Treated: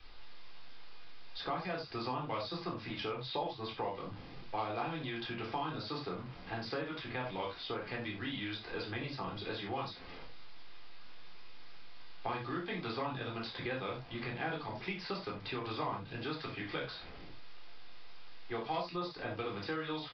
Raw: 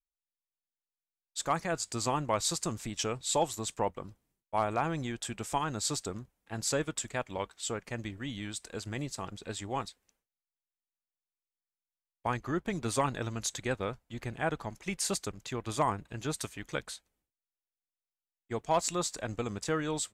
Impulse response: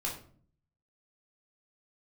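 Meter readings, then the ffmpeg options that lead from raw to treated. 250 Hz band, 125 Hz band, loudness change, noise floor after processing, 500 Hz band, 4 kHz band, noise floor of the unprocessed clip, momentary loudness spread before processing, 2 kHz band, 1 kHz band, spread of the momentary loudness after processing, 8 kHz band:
-4.5 dB, -6.0 dB, -5.5 dB, -49 dBFS, -5.0 dB, -3.0 dB, under -85 dBFS, 10 LU, -1.5 dB, -5.0 dB, 20 LU, under -35 dB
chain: -filter_complex "[0:a]aeval=exprs='val(0)+0.5*0.00531*sgn(val(0))':c=same,acrossover=split=120|1300[s0][s1][s2];[s0]acompressor=threshold=0.00126:ratio=6[s3];[s3][s1][s2]amix=inputs=3:normalize=0[s4];[1:a]atrim=start_sample=2205,atrim=end_sample=4410[s5];[s4][s5]afir=irnorm=-1:irlink=0,acrossover=split=720|3000[s6][s7][s8];[s6]acompressor=threshold=0.00794:ratio=4[s9];[s7]acompressor=threshold=0.00631:ratio=4[s10];[s8]acompressor=threshold=0.00447:ratio=4[s11];[s9][s10][s11]amix=inputs=3:normalize=0,aresample=11025,aresample=44100,volume=1.19"

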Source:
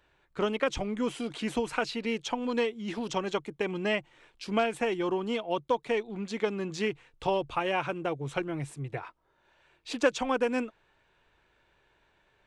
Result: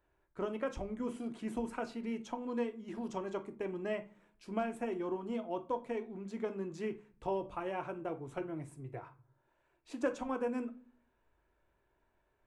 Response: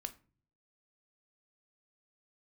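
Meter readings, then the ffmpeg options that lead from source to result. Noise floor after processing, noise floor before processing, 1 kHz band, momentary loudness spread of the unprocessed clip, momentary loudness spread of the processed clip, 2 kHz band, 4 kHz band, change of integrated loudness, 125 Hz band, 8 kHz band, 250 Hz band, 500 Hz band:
-77 dBFS, -69 dBFS, -8.5 dB, 8 LU, 8 LU, -13.5 dB, -18.5 dB, -8.0 dB, -9.0 dB, under -10 dB, -6.0 dB, -8.0 dB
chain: -filter_complex "[0:a]equalizer=f=3700:t=o:w=1.9:g=-13[s0];[1:a]atrim=start_sample=2205,asetrate=41454,aresample=44100[s1];[s0][s1]afir=irnorm=-1:irlink=0,volume=0.596"

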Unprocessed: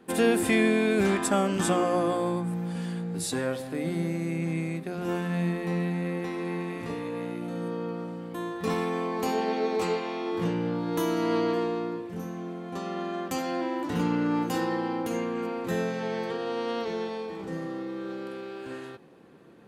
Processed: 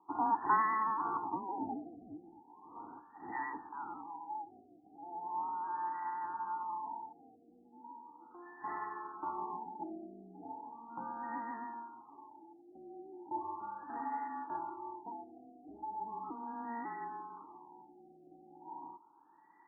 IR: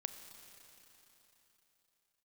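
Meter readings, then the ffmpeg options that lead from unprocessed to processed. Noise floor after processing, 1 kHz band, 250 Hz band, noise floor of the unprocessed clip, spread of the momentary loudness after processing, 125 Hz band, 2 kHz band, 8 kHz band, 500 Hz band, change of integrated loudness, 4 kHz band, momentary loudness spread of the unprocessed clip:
-63 dBFS, -2.5 dB, -20.0 dB, -40 dBFS, 19 LU, under -30 dB, -13.5 dB, under -40 dB, -24.5 dB, -10.5 dB, under -40 dB, 11 LU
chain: -filter_complex "[0:a]aeval=exprs='val(0)+0.0126*(sin(2*PI*60*n/s)+sin(2*PI*2*60*n/s)/2+sin(2*PI*3*60*n/s)/3+sin(2*PI*4*60*n/s)/4+sin(2*PI*5*60*n/s)/5)':c=same,asubboost=boost=5.5:cutoff=130,aeval=exprs='0.282*(cos(1*acos(clip(val(0)/0.282,-1,1)))-cos(1*PI/2))+0.01*(cos(2*acos(clip(val(0)/0.282,-1,1)))-cos(2*PI/2))+0.00708*(cos(3*acos(clip(val(0)/0.282,-1,1)))-cos(3*PI/2))':c=same,asplit=2[s0][s1];[s1]asoftclip=type=hard:threshold=0.112,volume=0.531[s2];[s0][s2]amix=inputs=2:normalize=0,lowpass=f=3000:t=q:w=0.5098,lowpass=f=3000:t=q:w=0.6013,lowpass=f=3000:t=q:w=0.9,lowpass=f=3000:t=q:w=2.563,afreqshift=-3500,asplit=3[s3][s4][s5];[s3]bandpass=f=300:t=q:w=8,volume=1[s6];[s4]bandpass=f=870:t=q:w=8,volume=0.501[s7];[s5]bandpass=f=2240:t=q:w=8,volume=0.355[s8];[s6][s7][s8]amix=inputs=3:normalize=0,afftfilt=real='re*lt(b*sr/1024,770*pow(2000/770,0.5+0.5*sin(2*PI*0.37*pts/sr)))':imag='im*lt(b*sr/1024,770*pow(2000/770,0.5+0.5*sin(2*PI*0.37*pts/sr)))':win_size=1024:overlap=0.75,volume=7.94"

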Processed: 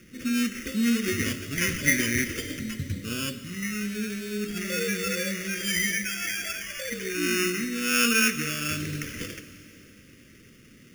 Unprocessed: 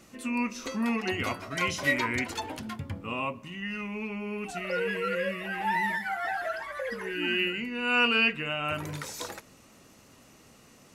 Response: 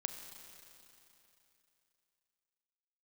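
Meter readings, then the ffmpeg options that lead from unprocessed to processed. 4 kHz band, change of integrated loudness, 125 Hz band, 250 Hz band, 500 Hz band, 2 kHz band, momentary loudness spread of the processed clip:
+2.5 dB, +3.0 dB, +5.5 dB, +5.0 dB, -0.5 dB, +1.5 dB, 11 LU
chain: -filter_complex "[0:a]acrusher=samples=11:mix=1:aa=0.000001,asuperstop=centerf=850:order=4:qfactor=0.61,asplit=2[s0][s1];[1:a]atrim=start_sample=2205[s2];[s1][s2]afir=irnorm=-1:irlink=0,volume=1.33[s3];[s0][s3]amix=inputs=2:normalize=0,volume=0.841"

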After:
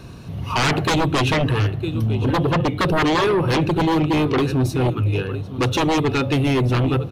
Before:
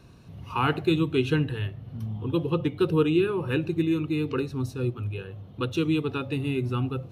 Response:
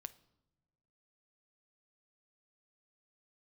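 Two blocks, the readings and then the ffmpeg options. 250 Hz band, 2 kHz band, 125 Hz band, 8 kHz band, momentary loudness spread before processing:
+5.5 dB, +10.5 dB, +8.5 dB, no reading, 10 LU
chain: -af "aecho=1:1:956:0.15,aeval=exprs='0.316*sin(PI/2*5.01*val(0)/0.316)':c=same,volume=0.596"

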